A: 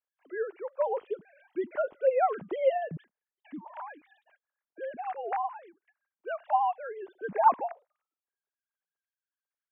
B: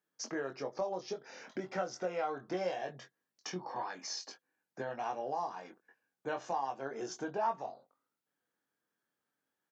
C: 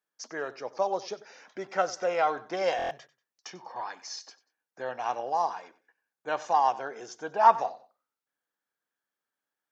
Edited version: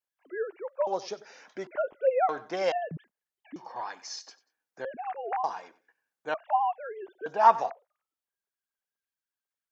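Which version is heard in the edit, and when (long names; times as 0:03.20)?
A
0:00.87–0:01.67: punch in from C
0:02.29–0:02.72: punch in from C
0:03.56–0:04.85: punch in from C
0:05.44–0:06.34: punch in from C
0:07.26–0:07.70: punch in from C
not used: B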